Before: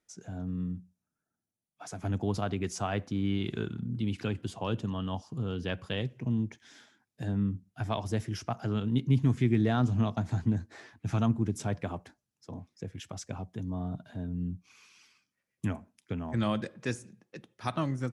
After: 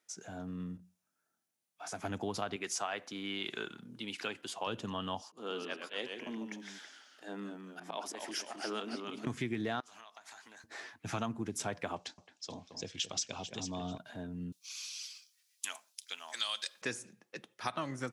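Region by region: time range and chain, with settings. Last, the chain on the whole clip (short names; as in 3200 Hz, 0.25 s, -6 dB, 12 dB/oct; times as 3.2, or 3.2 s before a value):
0.77–1.93 HPF 59 Hz + compressor 2:1, threshold -49 dBFS + doubler 23 ms -3 dB
2.56–4.67 HPF 130 Hz + low shelf 300 Hz -11.5 dB
5.29–9.27 HPF 260 Hz 24 dB/oct + auto swell 0.134 s + echoes that change speed 90 ms, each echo -1 st, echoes 2, each echo -6 dB
9.8–10.64 HPF 1000 Hz + compressor 12:1, threshold -52 dBFS + high shelf 8100 Hz +5 dB
11.96–13.98 LPF 7200 Hz 24 dB/oct + resonant high shelf 2500 Hz +10 dB, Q 1.5 + echo with dull and thin repeats by turns 0.22 s, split 2400 Hz, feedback 55%, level -8.5 dB
14.52–16.82 HPF 1200 Hz + resonant high shelf 2800 Hz +12 dB, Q 1.5
whole clip: HPF 720 Hz 6 dB/oct; compressor, threshold -37 dBFS; gain +5 dB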